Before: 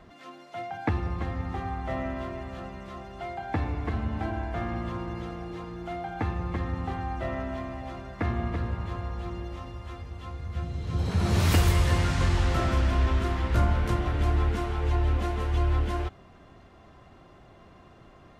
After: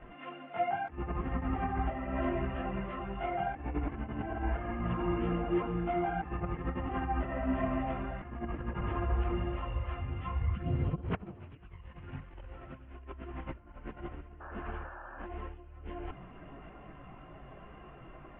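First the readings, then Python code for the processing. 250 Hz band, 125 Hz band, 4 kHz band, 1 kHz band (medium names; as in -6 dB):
-3.5 dB, -10.0 dB, -14.5 dB, -3.0 dB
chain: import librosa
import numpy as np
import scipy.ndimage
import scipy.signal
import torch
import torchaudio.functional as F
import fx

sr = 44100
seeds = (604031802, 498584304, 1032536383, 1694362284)

y = fx.dynamic_eq(x, sr, hz=320.0, q=1.1, threshold_db=-41.0, ratio=4.0, max_db=4)
y = scipy.signal.sosfilt(scipy.signal.ellip(4, 1.0, 40, 2900.0, 'lowpass', fs=sr, output='sos'), y)
y = fx.over_compress(y, sr, threshold_db=-33.0, ratio=-0.5)
y = fx.chorus_voices(y, sr, voices=6, hz=0.75, base_ms=18, depth_ms=4.1, mix_pct=60)
y = fx.spec_paint(y, sr, seeds[0], shape='noise', start_s=14.4, length_s=0.87, low_hz=510.0, high_hz=1800.0, level_db=-48.0)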